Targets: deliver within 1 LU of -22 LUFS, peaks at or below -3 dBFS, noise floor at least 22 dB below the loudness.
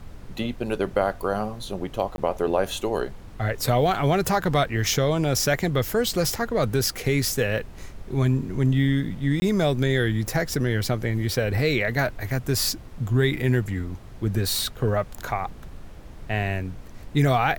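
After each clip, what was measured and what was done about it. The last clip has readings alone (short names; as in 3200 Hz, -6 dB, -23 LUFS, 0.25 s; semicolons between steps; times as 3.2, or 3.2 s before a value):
dropouts 2; longest dropout 20 ms; noise floor -42 dBFS; noise floor target -47 dBFS; loudness -24.5 LUFS; peak -8.0 dBFS; loudness target -22.0 LUFS
-> interpolate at 2.16/9.4, 20 ms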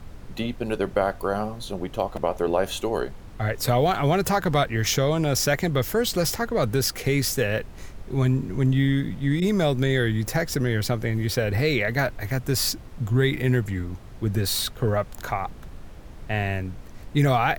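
dropouts 0; noise floor -42 dBFS; noise floor target -47 dBFS
-> noise print and reduce 6 dB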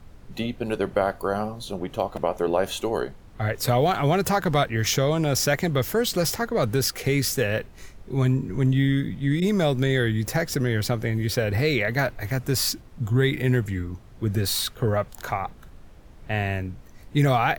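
noise floor -47 dBFS; loudness -24.5 LUFS; peak -8.0 dBFS; loudness target -22.0 LUFS
-> gain +2.5 dB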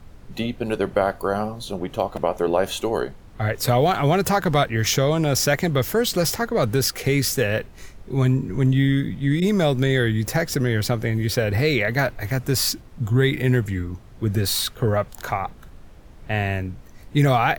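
loudness -22.0 LUFS; peak -5.5 dBFS; noise floor -44 dBFS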